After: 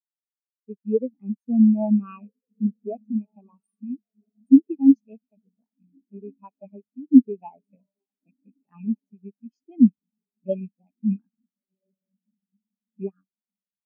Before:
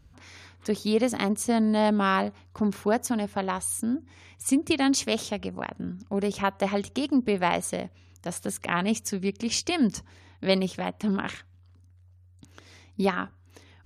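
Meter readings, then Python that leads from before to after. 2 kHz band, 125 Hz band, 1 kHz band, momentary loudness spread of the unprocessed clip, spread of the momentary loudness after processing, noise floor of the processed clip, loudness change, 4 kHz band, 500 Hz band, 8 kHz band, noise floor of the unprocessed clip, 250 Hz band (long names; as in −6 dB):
below −30 dB, can't be measured, below −15 dB, 11 LU, 19 LU, below −85 dBFS, +6.0 dB, below −40 dB, −5.0 dB, below −40 dB, −56 dBFS, +6.0 dB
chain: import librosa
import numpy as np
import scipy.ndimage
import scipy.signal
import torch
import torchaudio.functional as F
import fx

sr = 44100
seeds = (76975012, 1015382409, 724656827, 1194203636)

y = fx.rattle_buzz(x, sr, strikes_db=-30.0, level_db=-16.0)
y = fx.echo_diffused(y, sr, ms=1437, feedback_pct=56, wet_db=-9.5)
y = fx.spectral_expand(y, sr, expansion=4.0)
y = y * 10.0 ** (7.0 / 20.0)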